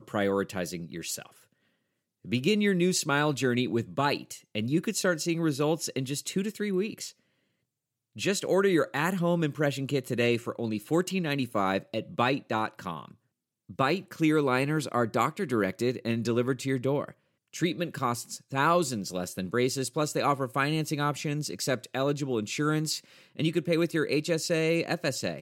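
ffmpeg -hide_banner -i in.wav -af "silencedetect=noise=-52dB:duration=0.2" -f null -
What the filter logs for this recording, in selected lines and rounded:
silence_start: 1.44
silence_end: 2.25 | silence_duration: 0.81
silence_start: 7.12
silence_end: 8.16 | silence_duration: 1.04
silence_start: 13.14
silence_end: 13.69 | silence_duration: 0.55
silence_start: 17.12
silence_end: 17.53 | silence_duration: 0.41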